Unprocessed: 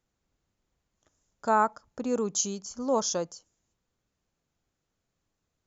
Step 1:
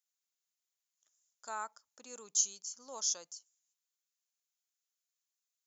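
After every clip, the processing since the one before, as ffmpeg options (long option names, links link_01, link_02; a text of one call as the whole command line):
ffmpeg -i in.wav -af "aderivative" out.wav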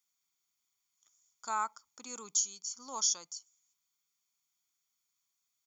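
ffmpeg -i in.wav -af "aecho=1:1:0.9:0.57,alimiter=limit=-22.5dB:level=0:latency=1:release=483,volume=5dB" out.wav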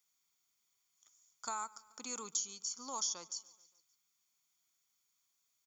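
ffmpeg -i in.wav -filter_complex "[0:a]acrossover=split=840|4300[link_01][link_02][link_03];[link_01]acompressor=threshold=-49dB:ratio=4[link_04];[link_02]acompressor=threshold=-46dB:ratio=4[link_05];[link_03]acompressor=threshold=-41dB:ratio=4[link_06];[link_04][link_05][link_06]amix=inputs=3:normalize=0,aecho=1:1:143|286|429|572:0.0794|0.0469|0.0277|0.0163,volume=2.5dB" out.wav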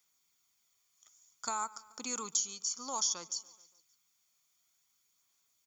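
ffmpeg -i in.wav -af "aphaser=in_gain=1:out_gain=1:delay=1.7:decay=0.22:speed=0.56:type=sinusoidal,volume=4.5dB" out.wav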